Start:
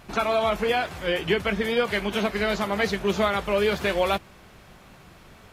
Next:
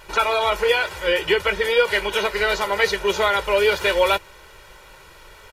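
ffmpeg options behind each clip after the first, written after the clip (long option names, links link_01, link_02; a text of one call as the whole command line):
ffmpeg -i in.wav -af "equalizer=frequency=130:width=0.47:gain=-12.5,aecho=1:1:2.1:0.75,volume=5dB" out.wav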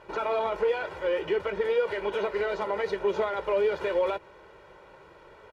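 ffmpeg -i in.wav -af "aeval=exprs='0.596*(cos(1*acos(clip(val(0)/0.596,-1,1)))-cos(1*PI/2))+0.0299*(cos(8*acos(clip(val(0)/0.596,-1,1)))-cos(8*PI/2))':channel_layout=same,alimiter=limit=-15dB:level=0:latency=1:release=75,bandpass=frequency=380:width_type=q:width=0.6:csg=0" out.wav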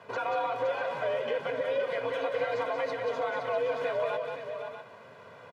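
ffmpeg -i in.wav -filter_complex "[0:a]alimiter=limit=-23.5dB:level=0:latency=1:release=263,afreqshift=72,asplit=2[link_01][link_02];[link_02]aecho=0:1:184|518|647:0.501|0.398|0.282[link_03];[link_01][link_03]amix=inputs=2:normalize=0" out.wav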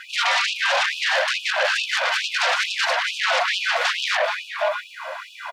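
ffmpeg -i in.wav -af "aeval=exprs='0.112*sin(PI/2*5.01*val(0)/0.112)':channel_layout=same,afftfilt=real='re*gte(b*sr/1024,490*pow(2500/490,0.5+0.5*sin(2*PI*2.3*pts/sr)))':imag='im*gte(b*sr/1024,490*pow(2500/490,0.5+0.5*sin(2*PI*2.3*pts/sr)))':win_size=1024:overlap=0.75,volume=3.5dB" out.wav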